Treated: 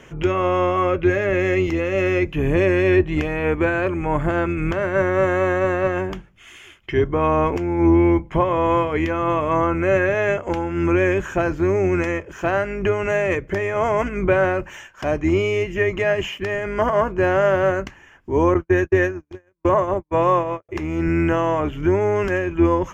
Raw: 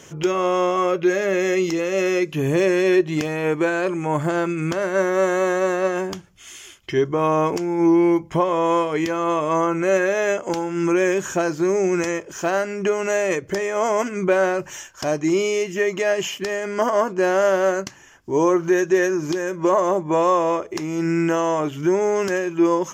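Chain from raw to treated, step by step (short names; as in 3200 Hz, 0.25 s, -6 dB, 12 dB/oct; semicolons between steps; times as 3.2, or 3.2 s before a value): octaver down 2 oct, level -2 dB; 18.54–20.69 gate -18 dBFS, range -53 dB; resonant high shelf 3500 Hz -10.5 dB, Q 1.5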